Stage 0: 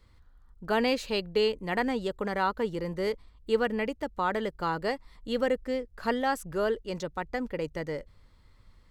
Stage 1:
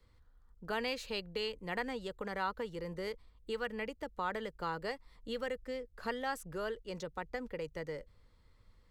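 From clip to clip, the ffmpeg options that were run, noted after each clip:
-filter_complex "[0:a]equalizer=f=480:t=o:w=0.28:g=6,acrossover=split=150|880|1600[a][b][c][d];[b]acompressor=threshold=-33dB:ratio=6[e];[a][e][c][d]amix=inputs=4:normalize=0,volume=-6.5dB"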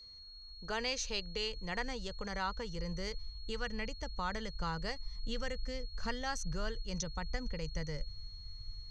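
-af "asubboost=boost=10.5:cutoff=110,lowpass=f=6.1k:t=q:w=10,aeval=exprs='val(0)+0.00316*sin(2*PI*4300*n/s)':c=same,volume=-1dB"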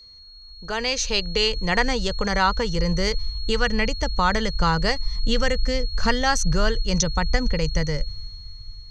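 -af "dynaudnorm=f=120:g=17:m=10.5dB,volume=6.5dB"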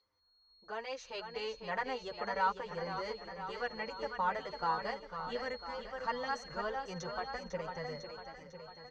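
-filter_complex "[0:a]bandpass=f=840:t=q:w=1.1:csg=0,asplit=2[a][b];[b]aecho=0:1:500|1000|1500|2000|2500|3000|3500:0.422|0.245|0.142|0.0823|0.0477|0.0277|0.0161[c];[a][c]amix=inputs=2:normalize=0,asplit=2[d][e];[e]adelay=7,afreqshift=-1.2[f];[d][f]amix=inputs=2:normalize=1,volume=-7dB"

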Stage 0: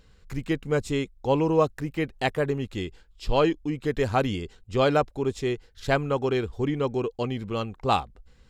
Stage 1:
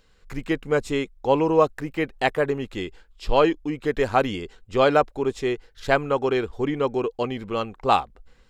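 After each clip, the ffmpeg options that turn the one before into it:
-filter_complex "[0:a]equalizer=f=92:w=0.46:g=-10.5,acrossover=split=2600[a][b];[a]dynaudnorm=f=140:g=3:m=5.5dB[c];[c][b]amix=inputs=2:normalize=0"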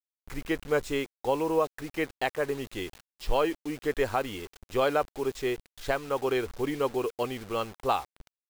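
-af "alimiter=limit=-10.5dB:level=0:latency=1:release=379,equalizer=f=180:t=o:w=1.2:g=-6,acrusher=bits=6:mix=0:aa=0.000001,volume=-3.5dB"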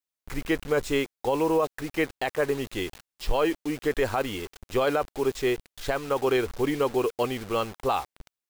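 -af "alimiter=limit=-19.5dB:level=0:latency=1:release=14,volume=4.5dB"

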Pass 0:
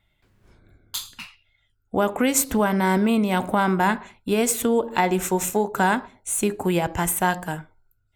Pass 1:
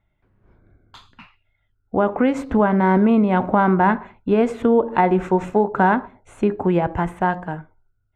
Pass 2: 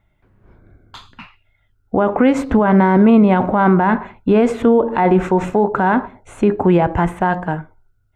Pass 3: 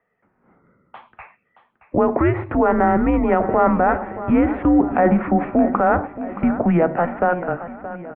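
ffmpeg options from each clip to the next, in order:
-af "lowpass=1.5k,dynaudnorm=f=760:g=5:m=7dB"
-af "alimiter=limit=-11.5dB:level=0:latency=1:release=17,volume=7dB"
-af "aecho=1:1:623|1246|1869|2492|3115|3738:0.2|0.112|0.0626|0.035|0.0196|0.011,highpass=f=340:t=q:w=0.5412,highpass=f=340:t=q:w=1.307,lowpass=f=2.5k:t=q:w=0.5176,lowpass=f=2.5k:t=q:w=0.7071,lowpass=f=2.5k:t=q:w=1.932,afreqshift=-170"

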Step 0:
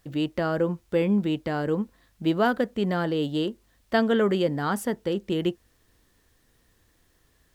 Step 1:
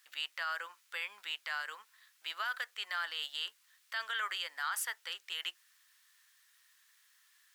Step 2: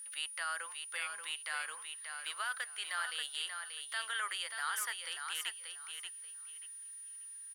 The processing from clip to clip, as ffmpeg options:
-af "highpass=f=1.3k:w=0.5412,highpass=f=1.3k:w=1.3066,alimiter=level_in=3.5dB:limit=-24dB:level=0:latency=1:release=23,volume=-3.5dB,volume=1.5dB"
-af "aeval=exprs='val(0)+0.00708*sin(2*PI*9600*n/s)':c=same,aecho=1:1:584|1168|1752:0.473|0.104|0.0229,volume=-1.5dB"

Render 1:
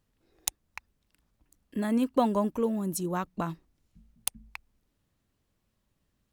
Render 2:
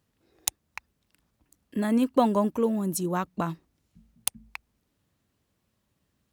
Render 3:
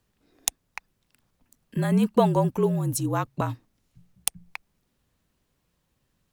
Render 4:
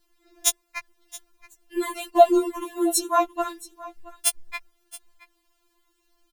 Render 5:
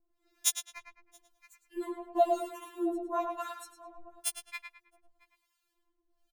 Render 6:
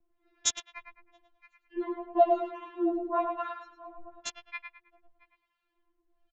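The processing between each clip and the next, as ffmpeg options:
-af "highpass=67,volume=3dB"
-af "afreqshift=-47,volume=2dB"
-af "aecho=1:1:673:0.112,afftfilt=real='re*4*eq(mod(b,16),0)':imag='im*4*eq(mod(b,16),0)':win_size=2048:overlap=0.75,volume=8dB"
-filter_complex "[0:a]acrossover=split=960[a][b];[a]aeval=exprs='val(0)*(1-1/2+1/2*cos(2*PI*1*n/s))':c=same[c];[b]aeval=exprs='val(0)*(1-1/2-1/2*cos(2*PI*1*n/s))':c=same[d];[c][d]amix=inputs=2:normalize=0,asplit=2[e][f];[f]adelay=106,lowpass=f=3.4k:p=1,volume=-5dB,asplit=2[g][h];[h]adelay=106,lowpass=f=3.4k:p=1,volume=0.34,asplit=2[i][j];[j]adelay=106,lowpass=f=3.4k:p=1,volume=0.34,asplit=2[k][l];[l]adelay=106,lowpass=f=3.4k:p=1,volume=0.34[m];[g][i][k][m]amix=inputs=4:normalize=0[n];[e][n]amix=inputs=2:normalize=0,volume=-6.5dB"
-filter_complex "[0:a]acrossover=split=160|1800|3200[a][b][c][d];[d]aeval=exprs='val(0)*gte(abs(val(0)),0.0422)':c=same[e];[a][b][c][e]amix=inputs=4:normalize=0,aresample=16000,aresample=44100,volume=3.5dB"

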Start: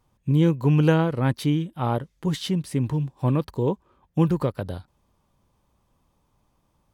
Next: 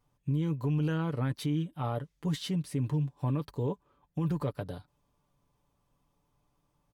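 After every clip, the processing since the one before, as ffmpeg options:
-af "aecho=1:1:6.9:0.51,alimiter=limit=-15.5dB:level=0:latency=1:release=18,volume=-7.5dB"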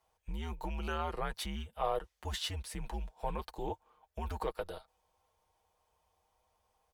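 -af "afreqshift=-95,lowshelf=f=400:t=q:w=1.5:g=-11,volume=2dB"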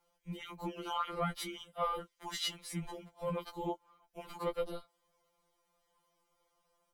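-af "afftfilt=real='re*2.83*eq(mod(b,8),0)':imag='im*2.83*eq(mod(b,8),0)':win_size=2048:overlap=0.75,volume=3dB"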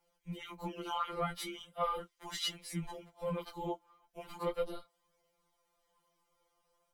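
-af "flanger=delay=6.2:depth=7.9:regen=-42:speed=0.38:shape=sinusoidal,volume=3.5dB"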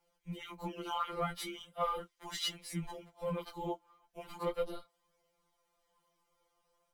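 -ar 44100 -c:a adpcm_ima_wav

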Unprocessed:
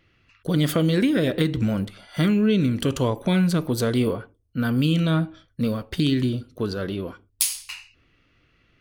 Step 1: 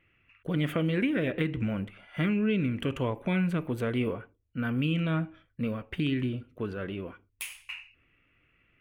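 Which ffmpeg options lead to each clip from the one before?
-af "highshelf=f=3.4k:t=q:w=3:g=-10.5,volume=-7.5dB"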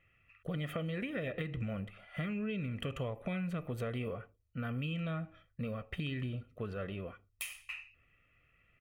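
-af "aecho=1:1:1.6:0.56,acompressor=threshold=-30dB:ratio=6,volume=-4dB"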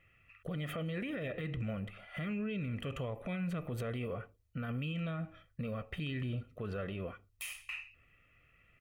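-af "alimiter=level_in=10dB:limit=-24dB:level=0:latency=1:release=34,volume=-10dB,volume=3dB"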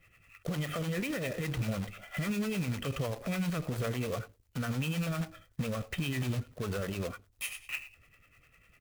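-filter_complex "[0:a]acrusher=bits=2:mode=log:mix=0:aa=0.000001,acrossover=split=400[a][b];[a]aeval=exprs='val(0)*(1-0.7/2+0.7/2*cos(2*PI*10*n/s))':c=same[c];[b]aeval=exprs='val(0)*(1-0.7/2-0.7/2*cos(2*PI*10*n/s))':c=same[d];[c][d]amix=inputs=2:normalize=0,volume=7dB"

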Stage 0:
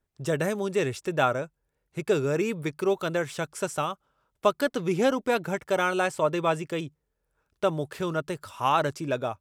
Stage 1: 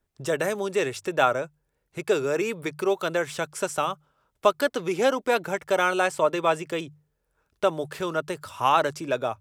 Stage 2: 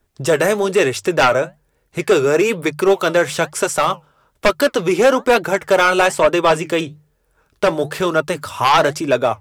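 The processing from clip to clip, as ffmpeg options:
-filter_complex "[0:a]bandreject=f=50:t=h:w=6,bandreject=f=100:t=h:w=6,bandreject=f=150:t=h:w=6,acrossover=split=330[a][b];[a]acompressor=threshold=-41dB:ratio=6[c];[c][b]amix=inputs=2:normalize=0,volume=3dB"
-af "aeval=exprs='0.531*sin(PI/2*2.82*val(0)/0.531)':c=same,flanger=delay=2.6:depth=7:regen=-72:speed=1.1:shape=sinusoidal,volume=3dB"

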